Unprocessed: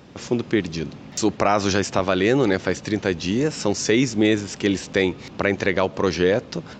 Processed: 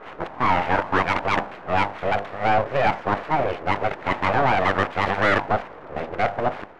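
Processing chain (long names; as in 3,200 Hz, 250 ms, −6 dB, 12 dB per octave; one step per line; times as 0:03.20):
played backwards from end to start
low-pass filter 1,800 Hz 24 dB per octave
low-shelf EQ 190 Hz −10 dB
mains-hum notches 50/100/150/200/250/300/350/400/450/500 Hz
full-wave rectification
mid-hump overdrive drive 20 dB, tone 1,400 Hz, clips at −6 dBFS
one half of a high-frequency compander decoder only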